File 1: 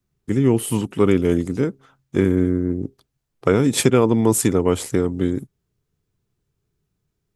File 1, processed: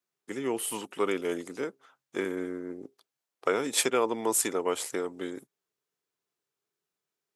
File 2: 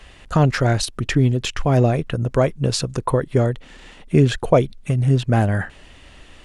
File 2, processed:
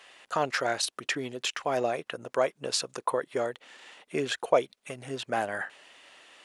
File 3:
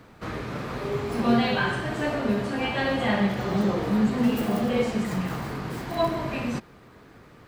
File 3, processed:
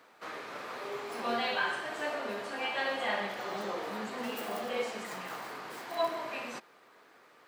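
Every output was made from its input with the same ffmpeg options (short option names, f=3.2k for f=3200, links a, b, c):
-af "highpass=550,volume=-4.5dB"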